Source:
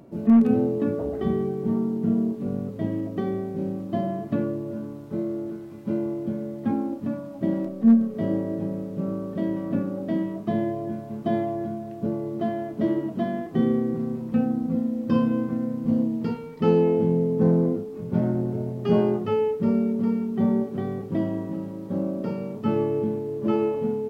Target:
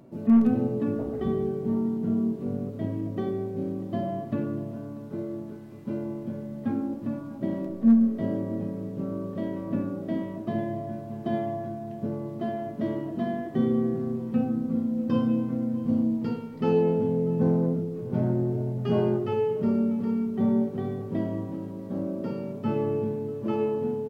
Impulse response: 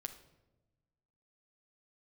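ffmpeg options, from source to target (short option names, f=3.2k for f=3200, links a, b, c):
-filter_complex "[0:a]asplit=2[a][b];[b]adelay=641.4,volume=-18dB,highshelf=f=4k:g=-14.4[c];[a][c]amix=inputs=2:normalize=0[d];[1:a]atrim=start_sample=2205[e];[d][e]afir=irnorm=-1:irlink=0"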